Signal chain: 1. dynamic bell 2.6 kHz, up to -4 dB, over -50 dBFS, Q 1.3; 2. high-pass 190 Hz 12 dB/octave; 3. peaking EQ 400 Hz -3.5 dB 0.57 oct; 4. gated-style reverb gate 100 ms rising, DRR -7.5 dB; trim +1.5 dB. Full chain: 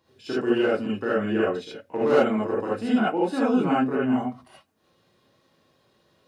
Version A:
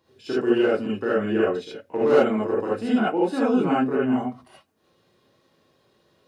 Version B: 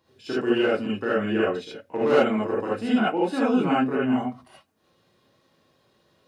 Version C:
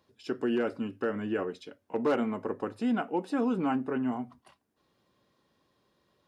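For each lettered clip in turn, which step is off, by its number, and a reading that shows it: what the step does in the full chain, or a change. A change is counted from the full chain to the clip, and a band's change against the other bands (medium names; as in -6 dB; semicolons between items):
3, 500 Hz band +2.0 dB; 1, 4 kHz band +3.0 dB; 4, momentary loudness spread change +2 LU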